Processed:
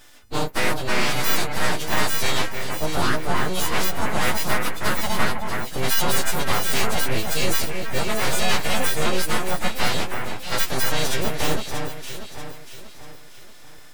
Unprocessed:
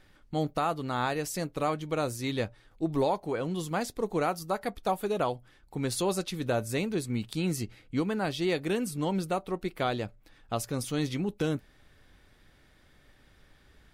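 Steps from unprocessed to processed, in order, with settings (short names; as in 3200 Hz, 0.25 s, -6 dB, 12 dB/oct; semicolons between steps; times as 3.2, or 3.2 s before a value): frequency quantiser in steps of 3 st; in parallel at +0.5 dB: limiter -22.5 dBFS, peak gain reduction 9 dB; on the sum: full-wave rectifier; echo with dull and thin repeats by turns 0.318 s, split 2300 Hz, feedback 64%, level -4 dB; gain +3.5 dB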